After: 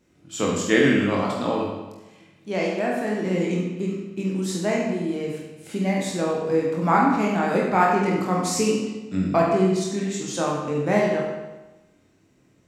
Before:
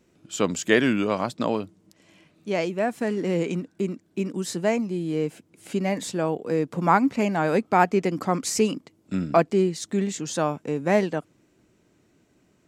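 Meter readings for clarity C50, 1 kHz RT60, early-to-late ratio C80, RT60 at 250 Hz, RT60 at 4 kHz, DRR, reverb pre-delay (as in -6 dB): 1.5 dB, 1.1 s, 4.0 dB, 1.1 s, 0.95 s, -3.5 dB, 21 ms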